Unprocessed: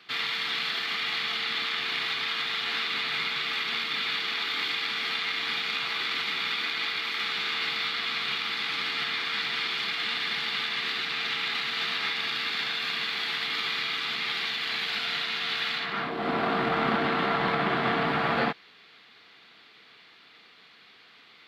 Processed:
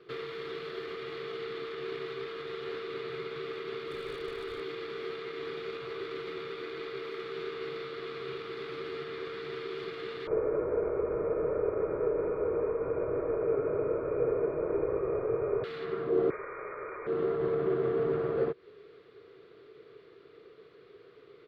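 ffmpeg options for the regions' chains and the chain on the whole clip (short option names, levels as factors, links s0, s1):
-filter_complex "[0:a]asettb=1/sr,asplit=3[s0][s1][s2];[s0]atrim=end=3.874[s3];[s1]atrim=start=3.87:end=4.6,asetpts=PTS-STARTPTS,afade=t=in:d=0.004:c=qsin,afade=t=out:st=0.726:d=0.004:c=qsin,aeval=exprs='0.0708*(abs(mod(val(0)/0.0708+3,4)-2)-1)':c=same,asubboost=boost=10.5:cutoff=94[s4];[s2]atrim=start=4.596[s5];[s3][s4]acrossfade=d=0.004:c1=hsin:c2=qsin[s6];[s6][s5]acrossfade=d=0.004:c1=qsin:c2=hsin,asettb=1/sr,asplit=3[s7][s8][s9];[s7]atrim=end=10.274[s10];[s8]atrim=start=10.27:end=15.64,asetpts=PTS-STARTPTS,afade=t=in:d=0.004:c=qsin,afade=t=out:st=5.366:d=0.004:c=qsin,asubboost=boost=4:cutoff=180,lowpass=f=2200:t=q:w=0.5098,lowpass=f=2200:t=q:w=0.6013,lowpass=f=2200:t=q:w=0.9,lowpass=f=2200:t=q:w=2.563,afreqshift=-2600[s11];[s9]atrim=start=15.636[s12];[s10][s11]acrossfade=d=0.004:c1=hsin:c2=qsin[s13];[s13][s12]acrossfade=d=0.004:c1=qsin:c2=hsin,asettb=1/sr,asplit=3[s14][s15][s16];[s14]atrim=end=16.304[s17];[s15]atrim=start=16.3:end=17.07,asetpts=PTS-STARTPTS,afade=t=in:d=0.004:c=qsin,afade=t=out:st=0.766:d=0.004:c=qsin,lowpass=f=2200:t=q:w=0.5098,lowpass=f=2200:t=q:w=0.6013,lowpass=f=2200:t=q:w=0.9,lowpass=f=2200:t=q:w=2.563,afreqshift=-2600,equalizer=f=1100:w=1.2:g=6[s18];[s16]atrim=start=17.066[s19];[s17][s18]acrossfade=d=0.004:c1=hsin:c2=qsin[s20];[s20][s19]acrossfade=d=0.004:c1=qsin:c2=hsin,equalizer=f=1200:t=o:w=1.1:g=12.5,acompressor=threshold=0.0501:ratio=6,firequalizer=gain_entry='entry(130,0);entry(220,-15);entry(400,10);entry(790,-25)':delay=0.05:min_phase=1,volume=2.66"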